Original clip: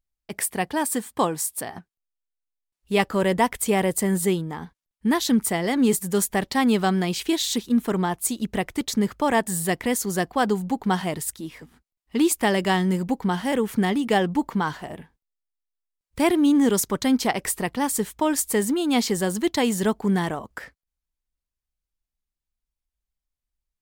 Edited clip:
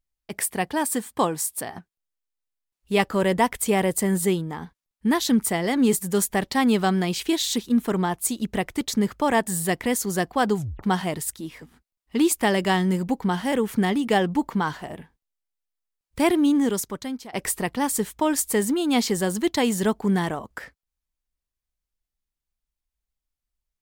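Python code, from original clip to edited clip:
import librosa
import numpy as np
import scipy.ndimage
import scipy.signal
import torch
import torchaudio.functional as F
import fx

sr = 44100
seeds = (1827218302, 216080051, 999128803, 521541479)

y = fx.edit(x, sr, fx.tape_stop(start_s=10.57, length_s=0.26),
    fx.fade_out_to(start_s=16.34, length_s=0.99, floor_db=-22.0), tone=tone)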